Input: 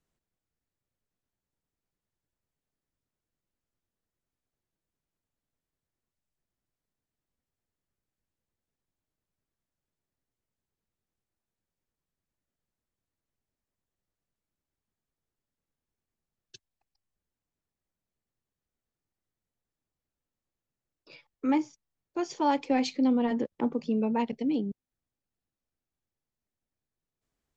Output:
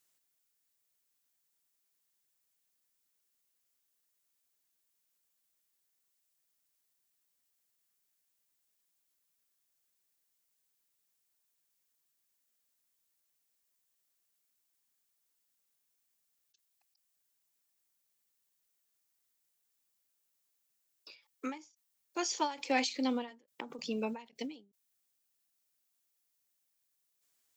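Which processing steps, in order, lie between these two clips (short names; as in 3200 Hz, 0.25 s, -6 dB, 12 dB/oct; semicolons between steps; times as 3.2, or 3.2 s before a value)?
tilt +4.5 dB/oct; ending taper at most 150 dB/s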